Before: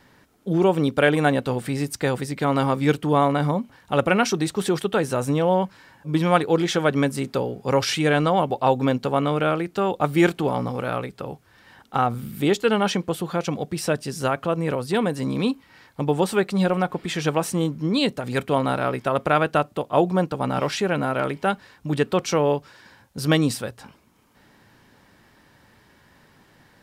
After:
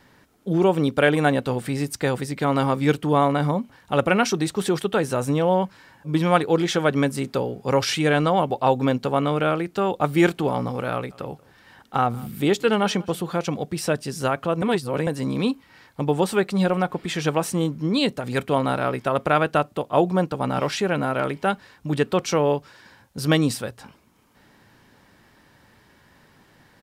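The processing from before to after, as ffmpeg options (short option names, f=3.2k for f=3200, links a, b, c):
-filter_complex "[0:a]asplit=3[a][b][c];[a]afade=t=out:st=11.1:d=0.02[d];[b]aecho=1:1:184:0.0668,afade=t=in:st=11.1:d=0.02,afade=t=out:st=13.49:d=0.02[e];[c]afade=t=in:st=13.49:d=0.02[f];[d][e][f]amix=inputs=3:normalize=0,asplit=3[g][h][i];[g]atrim=end=14.622[j];[h]atrim=start=14.618:end=15.072,asetpts=PTS-STARTPTS,areverse[k];[i]atrim=start=15.068[l];[j][k]acrossfade=d=0.004:c1=hsin:c2=hsin[m];[m][l]acrossfade=d=0.004:c1=hsin:c2=hsin"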